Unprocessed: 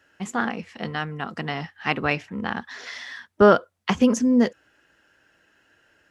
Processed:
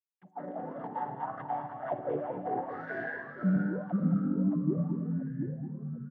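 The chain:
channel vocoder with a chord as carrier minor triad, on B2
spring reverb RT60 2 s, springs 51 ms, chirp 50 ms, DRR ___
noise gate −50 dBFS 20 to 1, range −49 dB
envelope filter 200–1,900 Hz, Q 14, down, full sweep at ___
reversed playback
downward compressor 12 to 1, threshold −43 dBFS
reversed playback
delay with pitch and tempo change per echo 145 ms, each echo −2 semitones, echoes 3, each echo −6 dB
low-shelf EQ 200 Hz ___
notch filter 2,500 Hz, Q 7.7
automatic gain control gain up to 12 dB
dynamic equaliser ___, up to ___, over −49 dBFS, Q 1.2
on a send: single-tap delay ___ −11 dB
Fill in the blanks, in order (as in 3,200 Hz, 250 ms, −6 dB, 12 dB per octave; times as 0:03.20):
7 dB, −17.5 dBFS, +10.5 dB, 1,900 Hz, +3 dB, 218 ms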